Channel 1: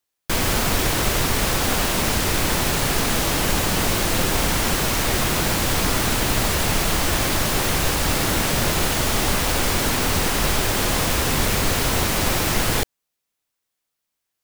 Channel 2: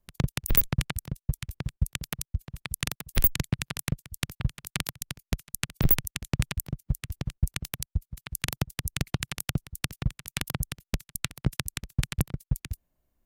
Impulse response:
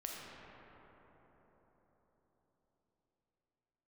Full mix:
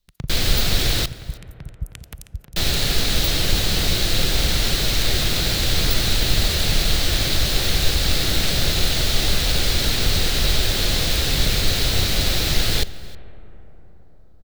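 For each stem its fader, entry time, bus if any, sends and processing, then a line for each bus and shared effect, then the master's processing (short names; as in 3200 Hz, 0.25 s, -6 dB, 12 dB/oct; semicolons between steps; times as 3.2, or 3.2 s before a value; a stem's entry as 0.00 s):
-3.5 dB, 0.00 s, muted 1.06–2.56, send -14 dB, echo send -21.5 dB, fifteen-band EQ 250 Hz -4 dB, 1000 Hz -10 dB, 4000 Hz +11 dB, 10000 Hz -3 dB
-8.0 dB, 0.00 s, send -15 dB, echo send -10 dB, dry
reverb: on, RT60 4.7 s, pre-delay 4 ms
echo: echo 0.316 s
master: low shelf 76 Hz +9.5 dB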